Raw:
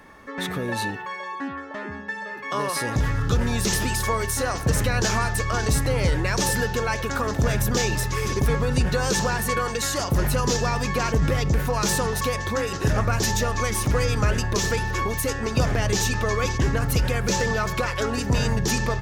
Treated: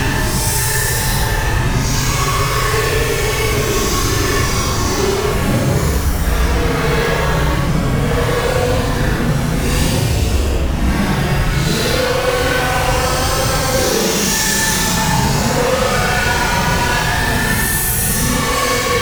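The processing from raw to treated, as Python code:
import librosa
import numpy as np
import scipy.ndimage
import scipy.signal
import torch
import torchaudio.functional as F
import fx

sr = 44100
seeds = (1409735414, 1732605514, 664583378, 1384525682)

y = fx.fuzz(x, sr, gain_db=40.0, gate_db=-41.0)
y = fx.paulstretch(y, sr, seeds[0], factor=12.0, window_s=0.05, from_s=7.95)
y = F.gain(torch.from_numpy(y), -1.0).numpy()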